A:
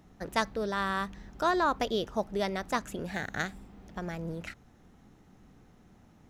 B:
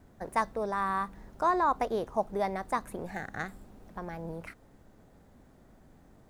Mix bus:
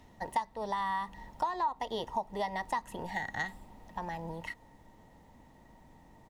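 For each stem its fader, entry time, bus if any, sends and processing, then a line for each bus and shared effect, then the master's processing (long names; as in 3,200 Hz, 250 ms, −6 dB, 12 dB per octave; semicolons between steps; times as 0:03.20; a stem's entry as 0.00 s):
−5.0 dB, 0.00 s, no send, meter weighting curve D; automatic ducking −9 dB, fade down 0.25 s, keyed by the second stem
−1.0 dB, 1.2 ms, no send, parametric band 1,500 Hz −10.5 dB 0.3 octaves; notch filter 390 Hz, Q 12; hollow resonant body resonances 920/1,900 Hz, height 17 dB, ringing for 50 ms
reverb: not used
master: downward compressor 5 to 1, threshold −30 dBFS, peak gain reduction 15.5 dB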